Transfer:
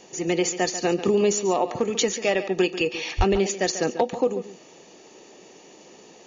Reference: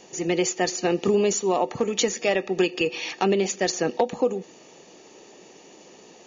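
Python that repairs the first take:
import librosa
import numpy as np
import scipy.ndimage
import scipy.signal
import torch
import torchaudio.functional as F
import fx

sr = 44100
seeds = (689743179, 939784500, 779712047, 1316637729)

y = fx.fix_deplosive(x, sr, at_s=(3.17,))
y = fx.fix_echo_inverse(y, sr, delay_ms=141, level_db=-12.5)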